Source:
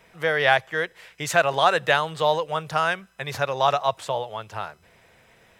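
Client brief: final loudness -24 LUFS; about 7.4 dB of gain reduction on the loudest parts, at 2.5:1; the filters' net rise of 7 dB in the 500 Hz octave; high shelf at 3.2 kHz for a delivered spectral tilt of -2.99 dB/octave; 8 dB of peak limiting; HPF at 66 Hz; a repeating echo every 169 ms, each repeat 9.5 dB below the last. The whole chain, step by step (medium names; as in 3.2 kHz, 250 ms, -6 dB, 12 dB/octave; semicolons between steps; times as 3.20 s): high-pass 66 Hz; peaking EQ 500 Hz +8.5 dB; treble shelf 3.2 kHz +6 dB; compression 2.5:1, threshold -21 dBFS; peak limiter -15.5 dBFS; feedback delay 169 ms, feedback 33%, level -9.5 dB; trim +3 dB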